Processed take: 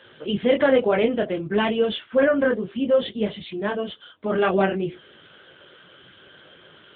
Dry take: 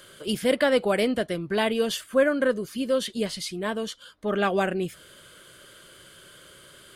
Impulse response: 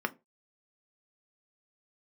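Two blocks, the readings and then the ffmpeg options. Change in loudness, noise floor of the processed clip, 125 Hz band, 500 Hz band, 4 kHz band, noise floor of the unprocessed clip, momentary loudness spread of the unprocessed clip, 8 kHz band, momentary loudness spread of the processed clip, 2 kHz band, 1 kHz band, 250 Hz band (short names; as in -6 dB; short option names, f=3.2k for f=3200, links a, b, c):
+3.0 dB, -51 dBFS, +3.5 dB, +3.5 dB, -1.0 dB, -51 dBFS, 9 LU, under -40 dB, 10 LU, +1.5 dB, +2.5 dB, +3.5 dB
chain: -filter_complex "[0:a]flanger=delay=19:depth=3.5:speed=0.59,asplit=2[a][b];[b]asuperpass=centerf=400:order=12:qfactor=0.67[c];[1:a]atrim=start_sample=2205,asetrate=61740,aresample=44100,adelay=62[d];[c][d]afir=irnorm=-1:irlink=0,volume=-21dB[e];[a][e]amix=inputs=2:normalize=0,volume=7dB" -ar 8000 -c:a libopencore_amrnb -b:a 7950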